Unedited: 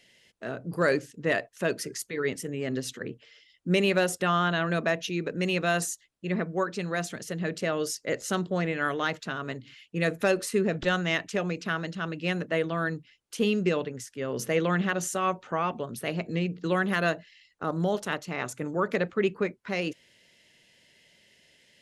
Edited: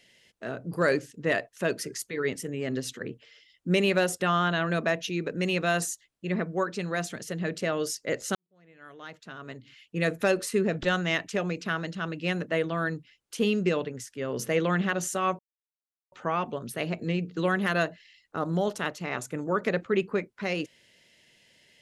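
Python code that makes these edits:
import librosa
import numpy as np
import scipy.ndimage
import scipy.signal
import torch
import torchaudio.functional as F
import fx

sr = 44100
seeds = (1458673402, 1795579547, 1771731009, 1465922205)

y = fx.edit(x, sr, fx.fade_in_span(start_s=8.35, length_s=1.65, curve='qua'),
    fx.insert_silence(at_s=15.39, length_s=0.73), tone=tone)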